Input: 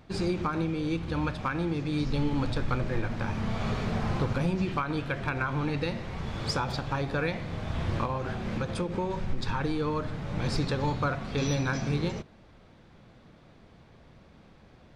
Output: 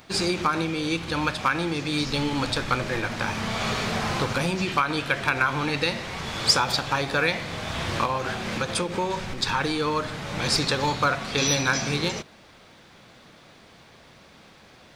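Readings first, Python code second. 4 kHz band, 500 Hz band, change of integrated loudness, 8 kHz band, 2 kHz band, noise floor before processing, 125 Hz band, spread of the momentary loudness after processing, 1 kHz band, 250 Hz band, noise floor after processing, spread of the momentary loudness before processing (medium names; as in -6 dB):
+13.5 dB, +4.5 dB, +5.5 dB, +15.5 dB, +10.0 dB, -55 dBFS, -1.0 dB, 6 LU, +7.5 dB, +1.5 dB, -52 dBFS, 5 LU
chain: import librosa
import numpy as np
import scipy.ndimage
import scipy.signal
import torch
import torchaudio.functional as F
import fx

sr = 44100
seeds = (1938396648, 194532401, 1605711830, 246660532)

y = fx.tilt_eq(x, sr, slope=3.0)
y = y * 10.0 ** (7.5 / 20.0)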